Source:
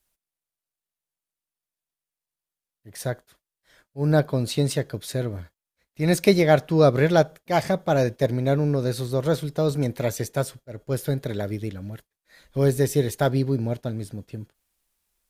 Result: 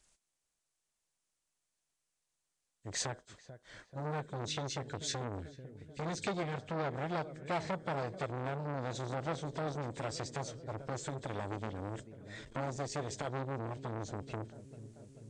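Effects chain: knee-point frequency compression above 3 kHz 1.5:1; 4.22–6.55 s: high-order bell 860 Hz -13.5 dB 1.2 oct; compression 4:1, threshold -36 dBFS, peak gain reduction 20 dB; filtered feedback delay 438 ms, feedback 69%, low-pass 2.2 kHz, level -18 dB; transformer saturation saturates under 1.6 kHz; trim +4.5 dB

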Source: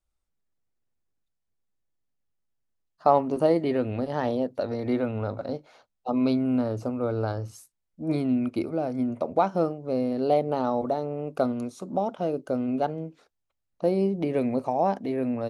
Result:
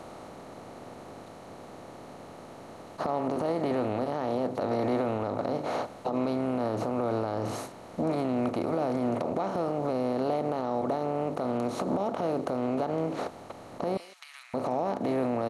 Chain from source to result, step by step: spectral levelling over time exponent 0.4; compression 6:1, threshold -23 dBFS, peak gain reduction 11.5 dB; 13.97–14.54 s: Bessel high-pass 2.4 kHz, order 6; speakerphone echo 160 ms, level -23 dB; peak limiter -19.5 dBFS, peak gain reduction 11 dB

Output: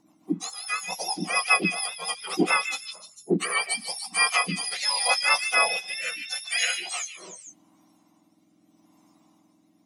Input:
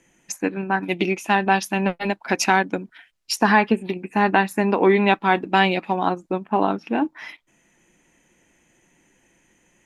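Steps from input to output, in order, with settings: spectrum inverted on a logarithmic axis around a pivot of 1.4 kHz; repeats whose band climbs or falls 149 ms, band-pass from 3.1 kHz, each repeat 0.7 oct, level -5 dB; rotary cabinet horn 7 Hz, later 0.8 Hz, at 2.48 s

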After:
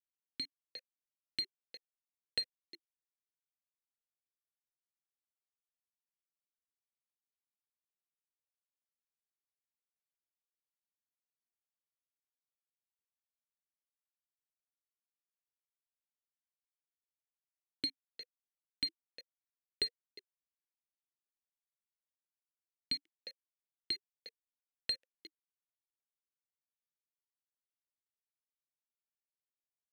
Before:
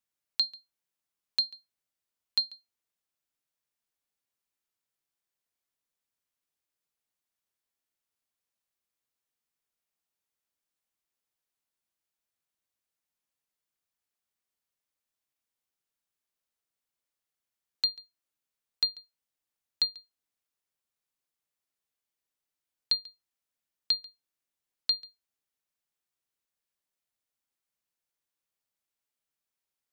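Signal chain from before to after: on a send: delay 356 ms -16.5 dB; on the sum: rotary cabinet horn 0.8 Hz; tilt shelf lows +6 dB; one-sided clip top -38 dBFS, bottom -23.5 dBFS; reverb removal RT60 1.3 s; level rider gain up to 8 dB; bit crusher 8-bit; talking filter e-i 1.2 Hz; trim +15 dB

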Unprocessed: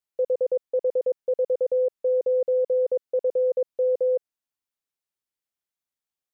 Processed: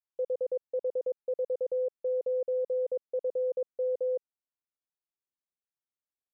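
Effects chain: low-pass 1.4 kHz 12 dB/octave; trim -7.5 dB

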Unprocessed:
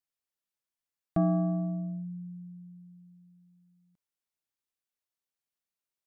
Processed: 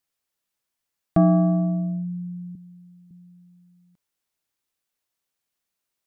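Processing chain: 2.55–3.11 s: high-pass 230 Hz; trim +9 dB

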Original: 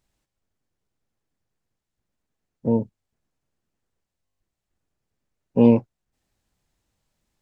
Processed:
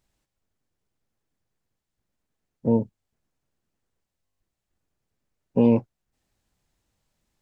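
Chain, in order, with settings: peak limiter -9.5 dBFS, peak gain reduction 4.5 dB

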